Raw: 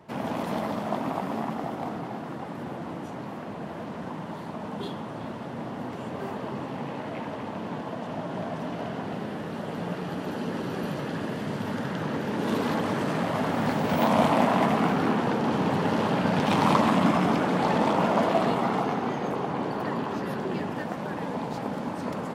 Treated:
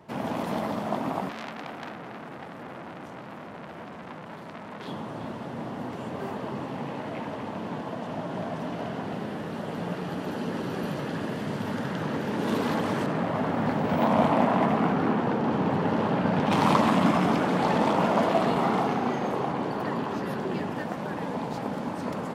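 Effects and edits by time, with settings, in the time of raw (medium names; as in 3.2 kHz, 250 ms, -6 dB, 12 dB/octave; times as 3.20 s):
1.29–4.88 s: transformer saturation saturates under 3 kHz
13.06–16.52 s: treble shelf 3.5 kHz -11.5 dB
18.52–19.52 s: doubling 37 ms -5 dB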